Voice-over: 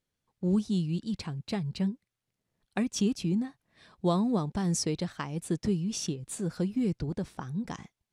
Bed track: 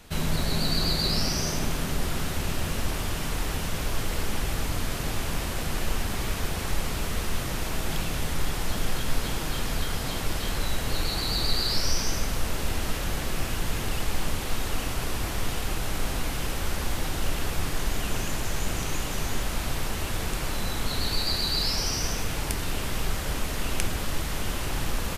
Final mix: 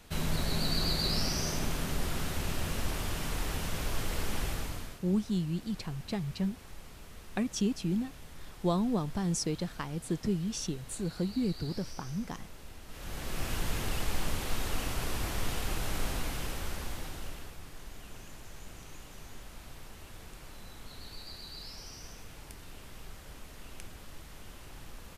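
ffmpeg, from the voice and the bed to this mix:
-filter_complex "[0:a]adelay=4600,volume=0.75[s0];[1:a]volume=3.55,afade=t=out:st=4.44:d=0.56:silence=0.16788,afade=t=in:st=12.88:d=0.66:silence=0.158489,afade=t=out:st=16.01:d=1.56:silence=0.188365[s1];[s0][s1]amix=inputs=2:normalize=0"

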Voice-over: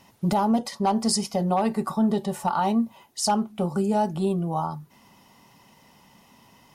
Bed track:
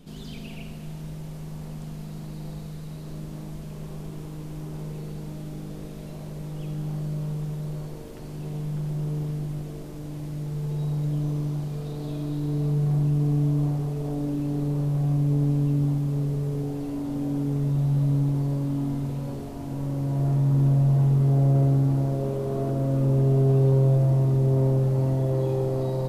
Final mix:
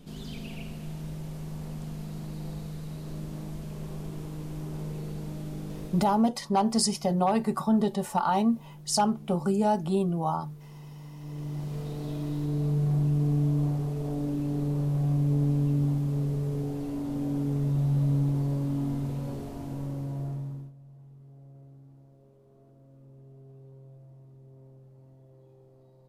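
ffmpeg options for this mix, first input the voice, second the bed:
-filter_complex "[0:a]adelay=5700,volume=0.841[s0];[1:a]volume=5.31,afade=t=out:st=5.84:d=0.46:silence=0.141254,afade=t=in:st=11.18:d=0.59:silence=0.16788,afade=t=out:st=19.54:d=1.18:silence=0.0375837[s1];[s0][s1]amix=inputs=2:normalize=0"

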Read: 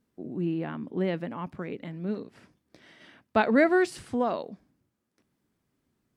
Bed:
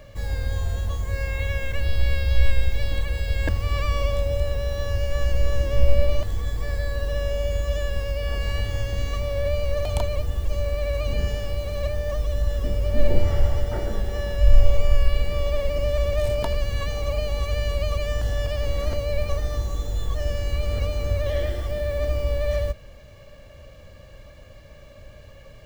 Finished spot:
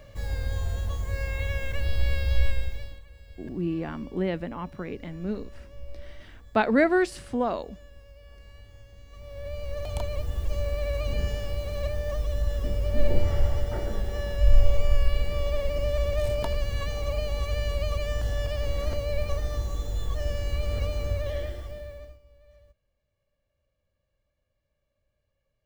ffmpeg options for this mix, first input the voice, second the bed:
-filter_complex "[0:a]adelay=3200,volume=1.06[s0];[1:a]volume=6.68,afade=t=out:st=2.34:d=0.66:silence=0.1,afade=t=in:st=9.08:d=1.36:silence=0.1,afade=t=out:st=20.98:d=1.21:silence=0.0354813[s1];[s0][s1]amix=inputs=2:normalize=0"

